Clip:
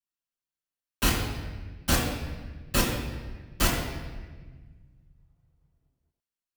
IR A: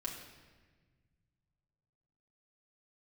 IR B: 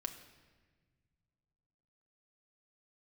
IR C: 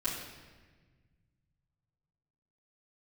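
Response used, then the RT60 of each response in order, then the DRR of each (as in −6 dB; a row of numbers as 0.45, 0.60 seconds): C; 1.4, 1.5, 1.4 seconds; −3.0, 5.0, −12.0 decibels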